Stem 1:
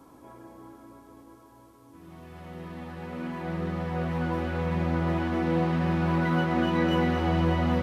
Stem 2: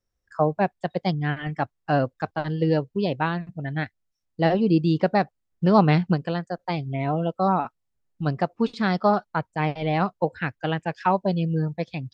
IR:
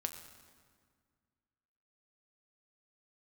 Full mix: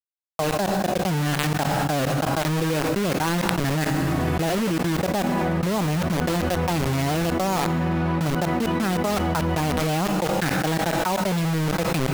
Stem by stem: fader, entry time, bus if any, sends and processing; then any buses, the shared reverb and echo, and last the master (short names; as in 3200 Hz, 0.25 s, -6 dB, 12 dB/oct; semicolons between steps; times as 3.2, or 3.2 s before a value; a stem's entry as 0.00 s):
-13.5 dB, 2.00 s, no send, dry
-2.5 dB, 0.00 s, send -12 dB, high shelf 2200 Hz -11 dB; compressor 4:1, threshold -24 dBFS, peak gain reduction 10 dB; bit-crush 5-bit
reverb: on, RT60 1.9 s, pre-delay 6 ms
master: fast leveller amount 100%